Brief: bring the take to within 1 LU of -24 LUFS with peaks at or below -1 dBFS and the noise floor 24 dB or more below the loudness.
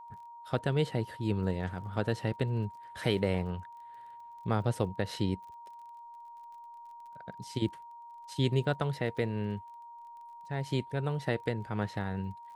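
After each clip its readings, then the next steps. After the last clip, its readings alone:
ticks 29/s; steady tone 940 Hz; tone level -46 dBFS; loudness -33.5 LUFS; peak -14.5 dBFS; loudness target -24.0 LUFS
-> de-click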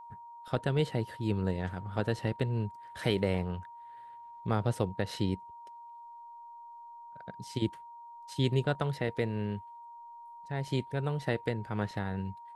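ticks 0/s; steady tone 940 Hz; tone level -46 dBFS
-> notch 940 Hz, Q 30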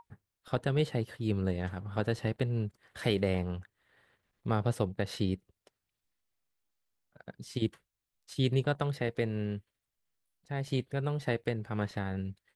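steady tone none; loudness -33.5 LUFS; peak -15.0 dBFS; loudness target -24.0 LUFS
-> gain +9.5 dB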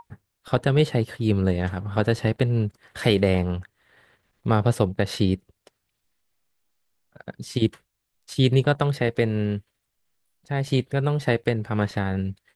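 loudness -24.0 LUFS; peak -5.5 dBFS; noise floor -78 dBFS

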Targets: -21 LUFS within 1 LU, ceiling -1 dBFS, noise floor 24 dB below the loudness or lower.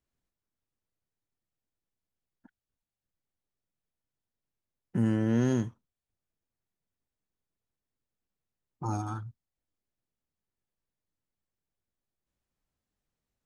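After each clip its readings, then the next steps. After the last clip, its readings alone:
loudness -30.5 LUFS; peak -15.5 dBFS; loudness target -21.0 LUFS
-> gain +9.5 dB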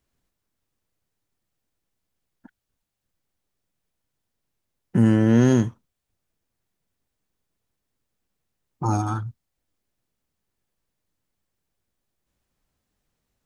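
loudness -21.0 LUFS; peak -6.0 dBFS; noise floor -81 dBFS

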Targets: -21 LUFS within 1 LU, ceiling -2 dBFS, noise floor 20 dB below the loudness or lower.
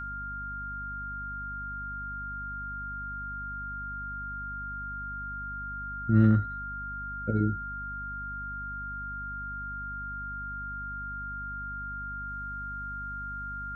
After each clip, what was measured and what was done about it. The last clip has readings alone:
hum 50 Hz; harmonics up to 250 Hz; hum level -40 dBFS; steady tone 1400 Hz; tone level -35 dBFS; loudness -33.5 LUFS; peak -10.0 dBFS; loudness target -21.0 LUFS
-> notches 50/100/150/200/250 Hz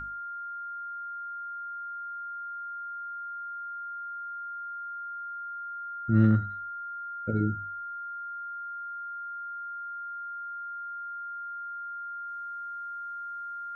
hum none; steady tone 1400 Hz; tone level -35 dBFS
-> notch 1400 Hz, Q 30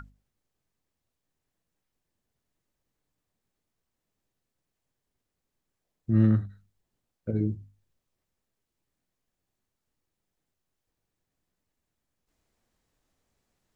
steady tone none; loudness -26.5 LUFS; peak -11.0 dBFS; loudness target -21.0 LUFS
-> gain +5.5 dB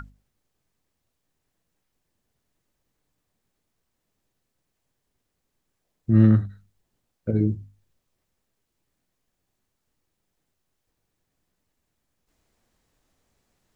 loudness -21.0 LUFS; peak -5.5 dBFS; noise floor -79 dBFS

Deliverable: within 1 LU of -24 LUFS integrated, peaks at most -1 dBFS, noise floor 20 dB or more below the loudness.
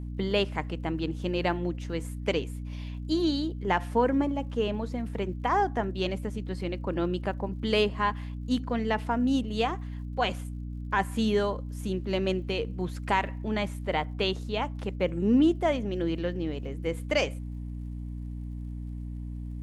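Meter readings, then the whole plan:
ticks 48/s; hum 60 Hz; harmonics up to 300 Hz; hum level -33 dBFS; loudness -29.5 LUFS; peak -11.0 dBFS; loudness target -24.0 LUFS
-> de-click; de-hum 60 Hz, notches 5; gain +5.5 dB

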